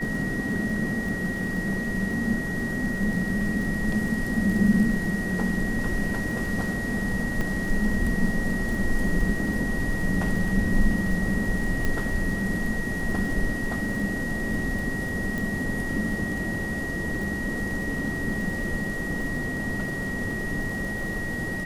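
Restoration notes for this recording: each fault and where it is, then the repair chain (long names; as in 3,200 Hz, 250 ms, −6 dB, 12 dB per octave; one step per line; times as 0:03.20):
surface crackle 22 per second −32 dBFS
whistle 1,900 Hz −31 dBFS
0:07.41: drop-out 2.7 ms
0:11.85: click −13 dBFS
0:15.38: click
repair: click removal
notch filter 1,900 Hz, Q 30
repair the gap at 0:07.41, 2.7 ms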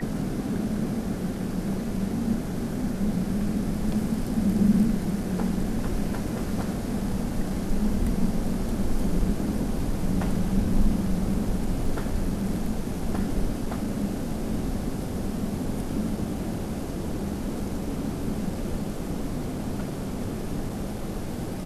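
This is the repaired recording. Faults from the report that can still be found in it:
0:11.85: click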